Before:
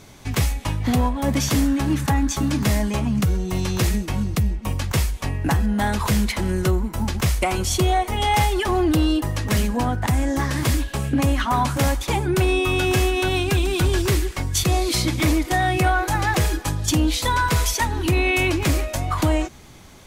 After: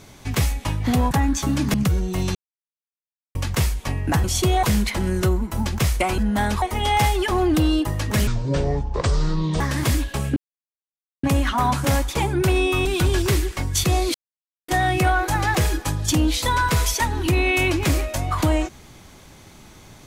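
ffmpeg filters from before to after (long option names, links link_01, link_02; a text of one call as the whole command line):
ffmpeg -i in.wav -filter_complex "[0:a]asplit=15[link_01][link_02][link_03][link_04][link_05][link_06][link_07][link_08][link_09][link_10][link_11][link_12][link_13][link_14][link_15];[link_01]atrim=end=1.112[link_16];[link_02]atrim=start=2.048:end=2.682[link_17];[link_03]atrim=start=3.108:end=3.72,asetpts=PTS-STARTPTS,afade=type=out:start_time=0.608:duration=0.004:curve=hsin[link_18];[link_04]atrim=start=3.72:end=4.72,asetpts=PTS-STARTPTS,volume=0[link_19];[link_05]atrim=start=4.72:end=5.612,asetpts=PTS-STARTPTS,afade=type=in:duration=0.004:curve=hsin[link_20];[link_06]atrim=start=7.598:end=7.992[link_21];[link_07]atrim=start=6.048:end=7.602[link_22];[link_08]atrim=start=5.608:end=6.052[link_23];[link_09]atrim=start=7.988:end=9.644[link_24];[link_10]atrim=start=9.64:end=10.4,asetpts=PTS-STARTPTS,asetrate=25137,aresample=44100,atrim=end_sample=58800,asetpts=PTS-STARTPTS[link_25];[link_11]atrim=start=10.396:end=11.16,asetpts=PTS-STARTPTS,afade=type=out:start_time=0.76:duration=0.004:curve=hsin,apad=pad_dur=0.87[link_26];[link_12]atrim=start=11.16:end=12.782,asetpts=PTS-STARTPTS,afade=type=in:duration=0.004:curve=hsin[link_27];[link_13]atrim=start=13.648:end=14.94,asetpts=PTS-STARTPTS,afade=type=out:start_time=1.288:duration=0.004:curve=hsin[link_28];[link_14]atrim=start=14.94:end=15.48,asetpts=PTS-STARTPTS,volume=0[link_29];[link_15]atrim=start=15.48,asetpts=PTS-STARTPTS,afade=type=in:duration=0.004:curve=hsin[link_30];[link_16][link_17]acrossfade=duration=0.004:curve1=hsin:curve2=hsin[link_31];[link_18][link_19][link_20]concat=n=3:v=0:a=1[link_32];[link_31][link_32]acrossfade=duration=0.004:curve1=hsin:curve2=hsin[link_33];[link_33][link_21]acrossfade=duration=0.004:curve1=hsin:curve2=hsin[link_34];[link_34][link_22]acrossfade=duration=0.004:curve1=hsin:curve2=hsin[link_35];[link_35][link_23]acrossfade=duration=0.004:curve1=hsin:curve2=hsin[link_36];[link_36][link_24]acrossfade=duration=0.004:curve1=hsin:curve2=hsin[link_37];[link_37][link_25]acrossfade=duration=0.004:curve1=hsin:curve2=hsin[link_38];[link_26][link_27]concat=n=2:v=0:a=1[link_39];[link_38][link_39]acrossfade=duration=0.004:curve1=hsin:curve2=hsin[link_40];[link_28][link_29][link_30]concat=n=3:v=0:a=1[link_41];[link_40][link_41]acrossfade=duration=0.004:curve1=hsin:curve2=hsin" out.wav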